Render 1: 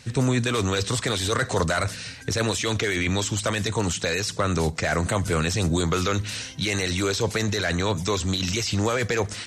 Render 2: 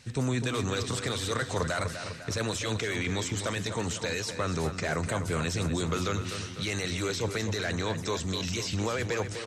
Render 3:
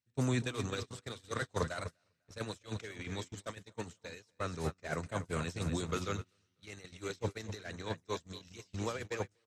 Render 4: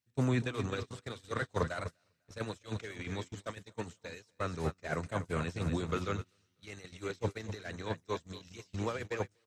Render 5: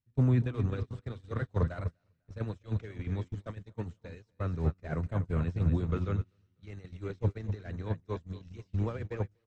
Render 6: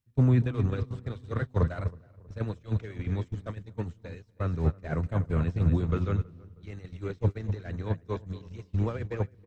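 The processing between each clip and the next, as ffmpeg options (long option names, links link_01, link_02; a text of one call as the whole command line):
ffmpeg -i in.wav -filter_complex "[0:a]asplit=2[link_01][link_02];[link_02]adelay=250,lowpass=frequency=4400:poles=1,volume=-8.5dB,asplit=2[link_03][link_04];[link_04]adelay=250,lowpass=frequency=4400:poles=1,volume=0.53,asplit=2[link_05][link_06];[link_06]adelay=250,lowpass=frequency=4400:poles=1,volume=0.53,asplit=2[link_07][link_08];[link_08]adelay=250,lowpass=frequency=4400:poles=1,volume=0.53,asplit=2[link_09][link_10];[link_10]adelay=250,lowpass=frequency=4400:poles=1,volume=0.53,asplit=2[link_11][link_12];[link_12]adelay=250,lowpass=frequency=4400:poles=1,volume=0.53[link_13];[link_01][link_03][link_05][link_07][link_09][link_11][link_13]amix=inputs=7:normalize=0,volume=-7dB" out.wav
ffmpeg -i in.wav -af "agate=range=-36dB:threshold=-28dB:ratio=16:detection=peak,volume=-2.5dB" out.wav
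ffmpeg -i in.wav -filter_complex "[0:a]acrossover=split=3300[link_01][link_02];[link_02]acompressor=threshold=-54dB:ratio=4:attack=1:release=60[link_03];[link_01][link_03]amix=inputs=2:normalize=0,volume=2dB" out.wav
ffmpeg -i in.wav -af "aemphasis=mode=reproduction:type=riaa,volume=-4.5dB" out.wav
ffmpeg -i in.wav -filter_complex "[0:a]asplit=2[link_01][link_02];[link_02]adelay=320,lowpass=frequency=1200:poles=1,volume=-23dB,asplit=2[link_03][link_04];[link_04]adelay=320,lowpass=frequency=1200:poles=1,volume=0.55,asplit=2[link_05][link_06];[link_06]adelay=320,lowpass=frequency=1200:poles=1,volume=0.55,asplit=2[link_07][link_08];[link_08]adelay=320,lowpass=frequency=1200:poles=1,volume=0.55[link_09];[link_01][link_03][link_05][link_07][link_09]amix=inputs=5:normalize=0,volume=3.5dB" out.wav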